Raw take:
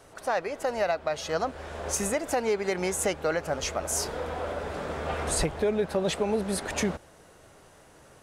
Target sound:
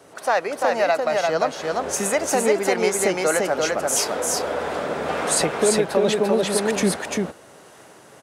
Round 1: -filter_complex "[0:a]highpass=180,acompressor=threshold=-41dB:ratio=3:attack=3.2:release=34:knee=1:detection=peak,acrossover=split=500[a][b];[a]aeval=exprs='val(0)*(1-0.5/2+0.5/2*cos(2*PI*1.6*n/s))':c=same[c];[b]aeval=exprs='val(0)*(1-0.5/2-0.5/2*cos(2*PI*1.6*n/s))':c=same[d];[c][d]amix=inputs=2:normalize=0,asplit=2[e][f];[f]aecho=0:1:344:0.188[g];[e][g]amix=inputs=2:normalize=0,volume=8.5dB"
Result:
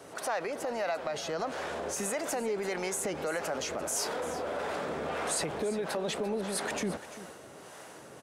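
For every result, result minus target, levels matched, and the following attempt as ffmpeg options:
compressor: peak gain reduction +14.5 dB; echo-to-direct -12 dB
-filter_complex "[0:a]highpass=180,acrossover=split=500[a][b];[a]aeval=exprs='val(0)*(1-0.5/2+0.5/2*cos(2*PI*1.6*n/s))':c=same[c];[b]aeval=exprs='val(0)*(1-0.5/2-0.5/2*cos(2*PI*1.6*n/s))':c=same[d];[c][d]amix=inputs=2:normalize=0,asplit=2[e][f];[f]aecho=0:1:344:0.188[g];[e][g]amix=inputs=2:normalize=0,volume=8.5dB"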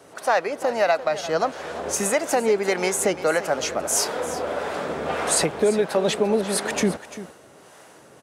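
echo-to-direct -12 dB
-filter_complex "[0:a]highpass=180,acrossover=split=500[a][b];[a]aeval=exprs='val(0)*(1-0.5/2+0.5/2*cos(2*PI*1.6*n/s))':c=same[c];[b]aeval=exprs='val(0)*(1-0.5/2-0.5/2*cos(2*PI*1.6*n/s))':c=same[d];[c][d]amix=inputs=2:normalize=0,asplit=2[e][f];[f]aecho=0:1:344:0.75[g];[e][g]amix=inputs=2:normalize=0,volume=8.5dB"

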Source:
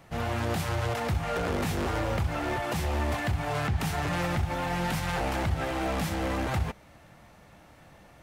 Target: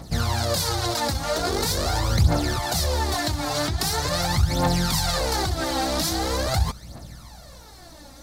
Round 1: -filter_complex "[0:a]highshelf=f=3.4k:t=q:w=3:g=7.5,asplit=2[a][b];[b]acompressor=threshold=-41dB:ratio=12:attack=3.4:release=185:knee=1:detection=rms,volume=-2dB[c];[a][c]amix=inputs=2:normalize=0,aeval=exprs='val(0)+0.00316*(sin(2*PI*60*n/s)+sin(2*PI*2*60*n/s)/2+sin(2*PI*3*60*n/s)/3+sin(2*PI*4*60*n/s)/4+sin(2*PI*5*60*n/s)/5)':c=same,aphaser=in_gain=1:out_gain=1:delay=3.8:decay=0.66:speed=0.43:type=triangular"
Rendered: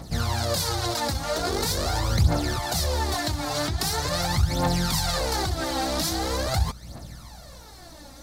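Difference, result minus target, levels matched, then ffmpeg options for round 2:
compressor: peak gain reduction +10.5 dB
-filter_complex "[0:a]highshelf=f=3.4k:t=q:w=3:g=7.5,asplit=2[a][b];[b]acompressor=threshold=-29.5dB:ratio=12:attack=3.4:release=185:knee=1:detection=rms,volume=-2dB[c];[a][c]amix=inputs=2:normalize=0,aeval=exprs='val(0)+0.00316*(sin(2*PI*60*n/s)+sin(2*PI*2*60*n/s)/2+sin(2*PI*3*60*n/s)/3+sin(2*PI*4*60*n/s)/4+sin(2*PI*5*60*n/s)/5)':c=same,aphaser=in_gain=1:out_gain=1:delay=3.8:decay=0.66:speed=0.43:type=triangular"

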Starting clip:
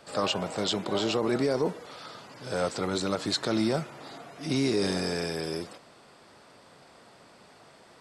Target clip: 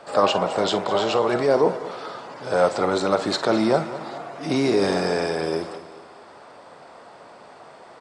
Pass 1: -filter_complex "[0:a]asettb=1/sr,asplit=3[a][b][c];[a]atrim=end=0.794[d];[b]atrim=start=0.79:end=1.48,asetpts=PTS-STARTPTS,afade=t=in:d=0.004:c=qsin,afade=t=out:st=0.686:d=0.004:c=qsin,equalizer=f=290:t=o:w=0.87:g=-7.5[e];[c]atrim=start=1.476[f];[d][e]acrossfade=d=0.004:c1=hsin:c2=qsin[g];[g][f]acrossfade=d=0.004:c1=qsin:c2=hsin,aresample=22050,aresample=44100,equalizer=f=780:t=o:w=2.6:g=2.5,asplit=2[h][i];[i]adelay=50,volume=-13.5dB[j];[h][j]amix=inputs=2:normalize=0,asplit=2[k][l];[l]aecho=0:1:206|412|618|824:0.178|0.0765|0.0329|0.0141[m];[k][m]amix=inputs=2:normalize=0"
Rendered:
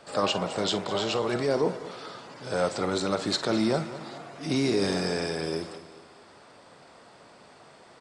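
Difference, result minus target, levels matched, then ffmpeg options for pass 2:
1000 Hz band -3.0 dB
-filter_complex "[0:a]asettb=1/sr,asplit=3[a][b][c];[a]atrim=end=0.794[d];[b]atrim=start=0.79:end=1.48,asetpts=PTS-STARTPTS,afade=t=in:d=0.004:c=qsin,afade=t=out:st=0.686:d=0.004:c=qsin,equalizer=f=290:t=o:w=0.87:g=-7.5[e];[c]atrim=start=1.476[f];[d][e]acrossfade=d=0.004:c1=hsin:c2=qsin[g];[g][f]acrossfade=d=0.004:c1=qsin:c2=hsin,aresample=22050,aresample=44100,equalizer=f=780:t=o:w=2.6:g=12,asplit=2[h][i];[i]adelay=50,volume=-13.5dB[j];[h][j]amix=inputs=2:normalize=0,asplit=2[k][l];[l]aecho=0:1:206|412|618|824:0.178|0.0765|0.0329|0.0141[m];[k][m]amix=inputs=2:normalize=0"

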